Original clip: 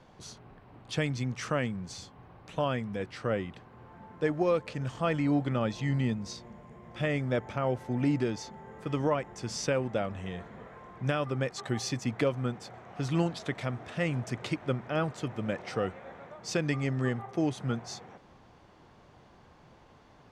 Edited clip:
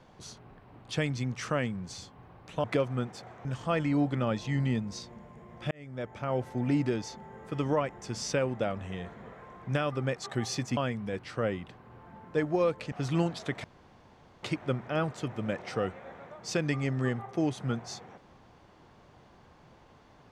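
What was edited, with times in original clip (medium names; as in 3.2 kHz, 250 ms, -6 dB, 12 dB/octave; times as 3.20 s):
2.64–4.79 s: swap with 12.11–12.92 s
7.05–7.76 s: fade in
13.64–14.43 s: room tone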